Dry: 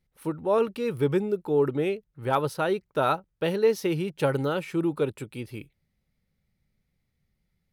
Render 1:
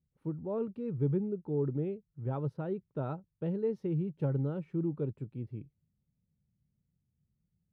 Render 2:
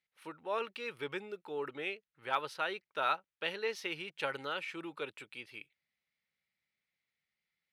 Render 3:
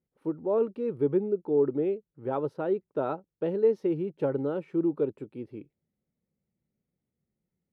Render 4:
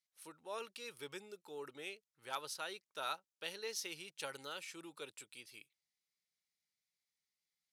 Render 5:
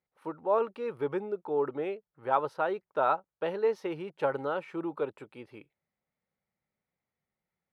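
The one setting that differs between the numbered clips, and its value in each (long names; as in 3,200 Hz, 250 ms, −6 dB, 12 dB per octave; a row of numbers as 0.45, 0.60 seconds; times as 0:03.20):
resonant band-pass, frequency: 130, 2,500, 340, 6,400, 890 Hertz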